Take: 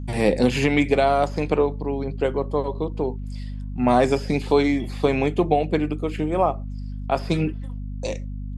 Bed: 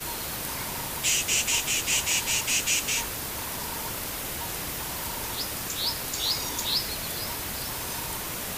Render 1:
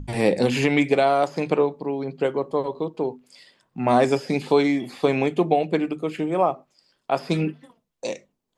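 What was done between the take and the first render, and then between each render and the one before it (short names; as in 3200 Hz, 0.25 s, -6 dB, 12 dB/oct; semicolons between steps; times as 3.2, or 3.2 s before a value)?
notches 50/100/150/200/250 Hz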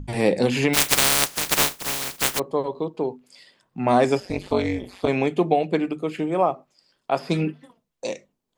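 0.73–2.38 spectral contrast lowered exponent 0.11; 4.2–5.08 AM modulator 190 Hz, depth 95%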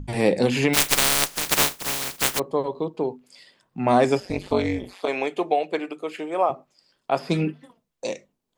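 0.81–1.44 half-wave gain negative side -3 dB; 4.93–6.5 HPF 450 Hz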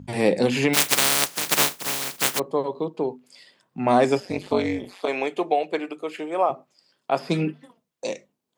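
HPF 120 Hz 12 dB/oct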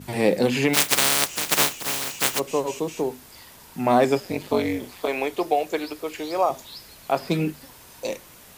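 add bed -14.5 dB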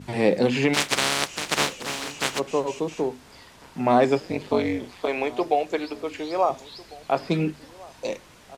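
air absorption 67 m; outdoor echo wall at 240 m, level -21 dB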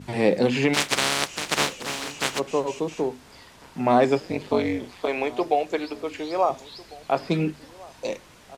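nothing audible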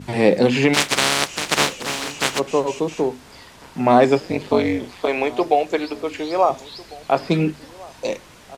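gain +5 dB; limiter -1 dBFS, peak gain reduction 3 dB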